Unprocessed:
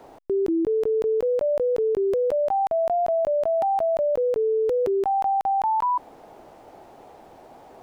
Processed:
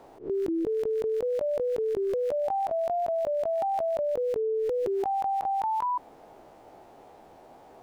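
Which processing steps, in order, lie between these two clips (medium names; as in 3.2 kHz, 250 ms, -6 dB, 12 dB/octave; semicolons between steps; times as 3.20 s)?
reverse spectral sustain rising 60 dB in 0.30 s; trim -5.5 dB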